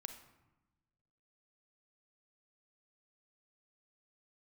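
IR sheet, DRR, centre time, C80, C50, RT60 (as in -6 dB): 7.5 dB, 15 ms, 11.5 dB, 8.5 dB, 1.0 s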